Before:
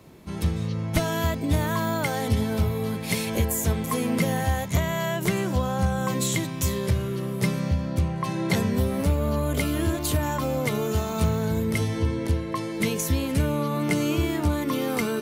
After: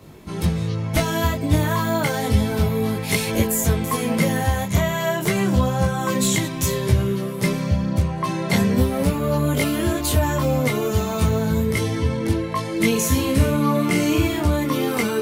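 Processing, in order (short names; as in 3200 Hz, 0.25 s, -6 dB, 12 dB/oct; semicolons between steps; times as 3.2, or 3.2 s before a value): 12.89–14.4 flutter echo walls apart 7.7 m, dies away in 0.51 s; detuned doubles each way 11 cents; gain +8.5 dB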